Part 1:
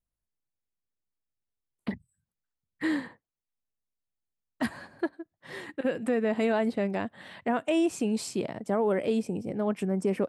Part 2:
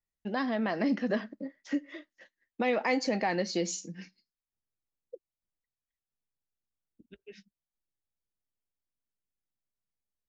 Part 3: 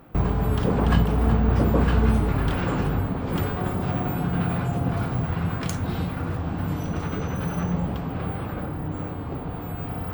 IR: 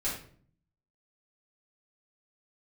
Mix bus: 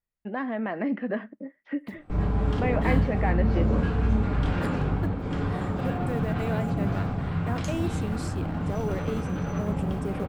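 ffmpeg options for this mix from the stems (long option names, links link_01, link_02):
-filter_complex "[0:a]acrusher=bits=7:mode=log:mix=0:aa=0.000001,volume=-6.5dB[link_01];[1:a]lowpass=frequency=2500:width=0.5412,lowpass=frequency=2500:width=1.3066,volume=0.5dB,asplit=2[link_02][link_03];[2:a]lowpass=7100,adelay=1950,volume=-8dB,asplit=2[link_04][link_05];[link_05]volume=-4.5dB[link_06];[link_03]apad=whole_len=532975[link_07];[link_04][link_07]sidechaincompress=threshold=-46dB:ratio=8:attack=12:release=477[link_08];[3:a]atrim=start_sample=2205[link_09];[link_06][link_09]afir=irnorm=-1:irlink=0[link_10];[link_01][link_02][link_08][link_10]amix=inputs=4:normalize=0"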